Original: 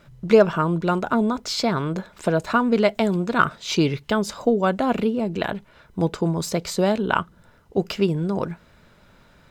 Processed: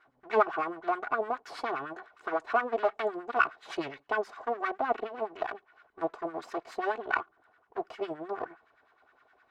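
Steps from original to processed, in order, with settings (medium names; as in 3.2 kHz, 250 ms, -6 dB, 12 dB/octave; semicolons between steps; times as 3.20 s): comb filter that takes the minimum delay 2.7 ms; LFO band-pass sine 9.7 Hz 650–1700 Hz; trim -1 dB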